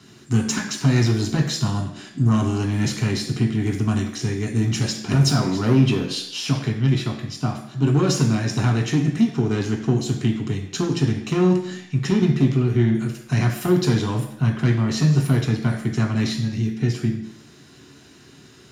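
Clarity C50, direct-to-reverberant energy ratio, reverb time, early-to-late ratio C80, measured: 7.5 dB, 1.0 dB, 0.75 s, 10.0 dB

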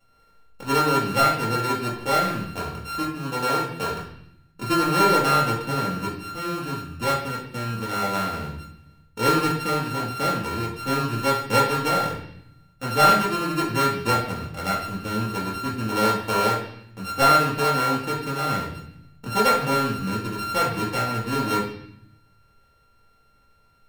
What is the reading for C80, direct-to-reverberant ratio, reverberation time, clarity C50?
8.0 dB, -6.0 dB, 0.70 s, 5.0 dB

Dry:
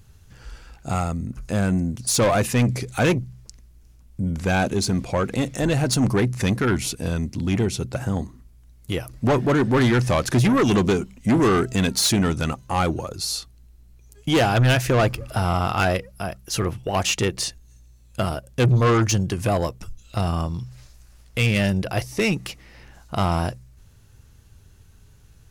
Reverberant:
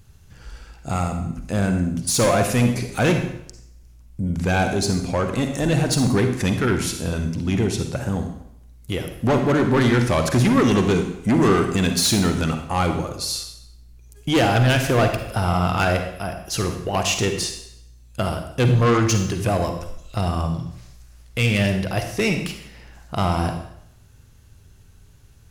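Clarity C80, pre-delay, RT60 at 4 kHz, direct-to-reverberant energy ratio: 9.5 dB, 35 ms, 0.70 s, 5.5 dB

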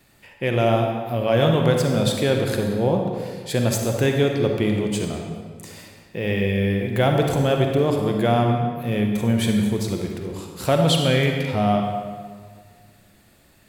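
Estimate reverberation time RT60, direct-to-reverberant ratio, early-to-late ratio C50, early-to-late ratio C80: 1.8 s, 2.0 dB, 2.5 dB, 4.5 dB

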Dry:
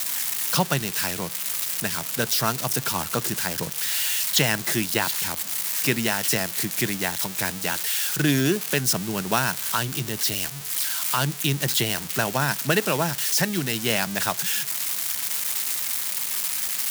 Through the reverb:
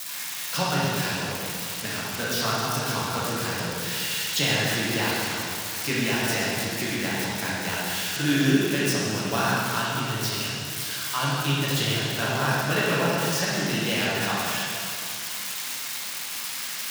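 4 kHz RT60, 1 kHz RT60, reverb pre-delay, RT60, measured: 2.3 s, 2.5 s, 4 ms, 2.5 s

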